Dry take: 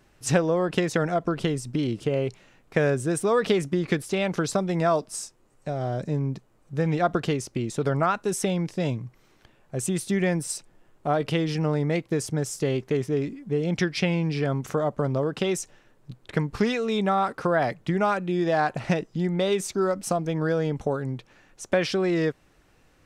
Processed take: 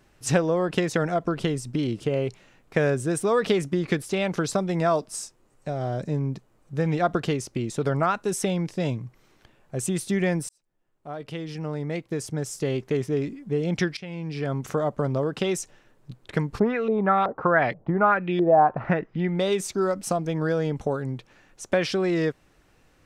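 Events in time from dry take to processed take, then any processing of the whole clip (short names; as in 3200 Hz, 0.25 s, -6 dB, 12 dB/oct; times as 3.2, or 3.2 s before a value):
10.49–12.99 fade in
13.97–14.65 fade in linear, from -21 dB
16.58–19.33 LFO low-pass saw up 3.5 Hz -> 0.74 Hz 540–3300 Hz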